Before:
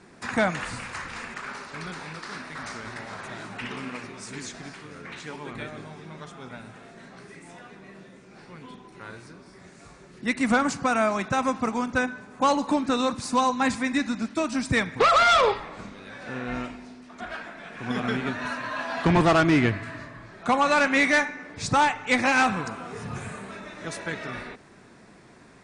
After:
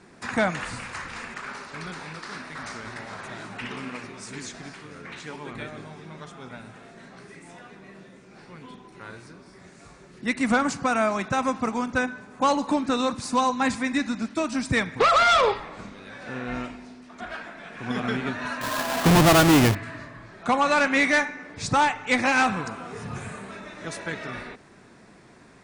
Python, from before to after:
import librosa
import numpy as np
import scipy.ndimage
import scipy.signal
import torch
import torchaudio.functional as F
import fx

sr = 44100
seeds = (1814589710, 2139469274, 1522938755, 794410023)

y = fx.halfwave_hold(x, sr, at=(18.61, 19.75))